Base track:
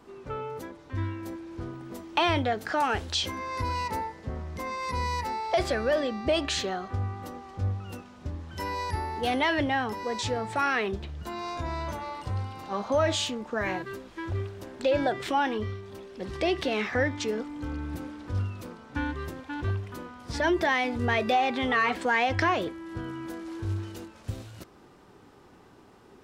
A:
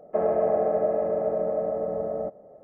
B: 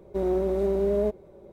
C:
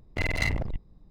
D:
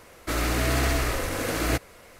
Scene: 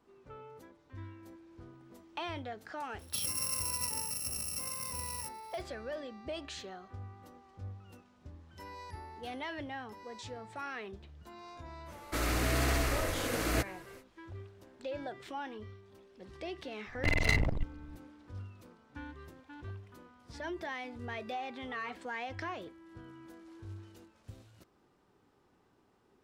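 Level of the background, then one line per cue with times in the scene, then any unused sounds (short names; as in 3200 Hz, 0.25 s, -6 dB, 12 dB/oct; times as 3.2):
base track -15 dB
2.99 add A -12.5 dB + FFT order left unsorted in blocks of 128 samples
11.85 add D -6 dB, fades 0.05 s
16.87 add C -1 dB
not used: B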